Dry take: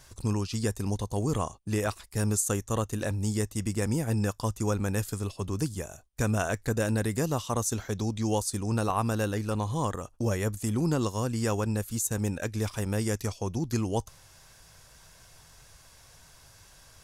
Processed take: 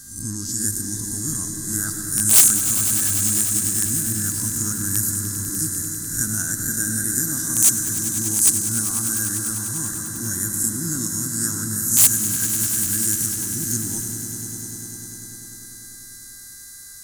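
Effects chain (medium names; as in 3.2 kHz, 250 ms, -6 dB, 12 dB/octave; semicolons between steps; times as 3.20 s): reverse spectral sustain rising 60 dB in 0.52 s; mains buzz 400 Hz, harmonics 12, -52 dBFS 0 dB/octave; FFT filter 120 Hz 0 dB, 310 Hz +3 dB, 490 Hz -22 dB, 1.1 kHz -11 dB, 1.6 kHz +6 dB, 2.4 kHz -23 dB, 6.5 kHz +11 dB, 9.2 kHz +13 dB; algorithmic reverb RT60 1.5 s, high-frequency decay 0.55×, pre-delay 65 ms, DRR 8 dB; integer overflow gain 7.5 dB; treble shelf 4.8 kHz +9.5 dB; on a send: echo with a slow build-up 99 ms, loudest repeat 5, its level -12.5 dB; on the sum: trim -4 dB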